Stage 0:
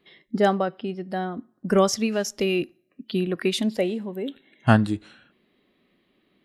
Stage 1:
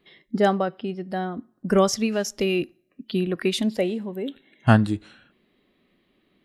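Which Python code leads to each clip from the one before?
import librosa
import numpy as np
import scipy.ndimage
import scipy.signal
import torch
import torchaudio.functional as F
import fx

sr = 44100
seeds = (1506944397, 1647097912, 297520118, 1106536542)

y = fx.low_shelf(x, sr, hz=64.0, db=8.0)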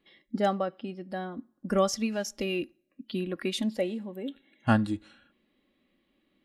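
y = x + 0.45 * np.pad(x, (int(3.6 * sr / 1000.0), 0))[:len(x)]
y = y * 10.0 ** (-7.0 / 20.0)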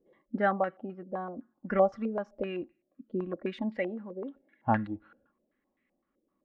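y = fx.rider(x, sr, range_db=4, speed_s=2.0)
y = fx.filter_held_lowpass(y, sr, hz=7.8, low_hz=490.0, high_hz=2000.0)
y = y * 10.0 ** (-5.5 / 20.0)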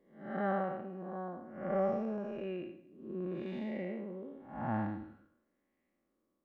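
y = fx.spec_blur(x, sr, span_ms=262.0)
y = y + 10.0 ** (-22.5 / 20.0) * np.pad(y, (int(234 * sr / 1000.0), 0))[:len(y)]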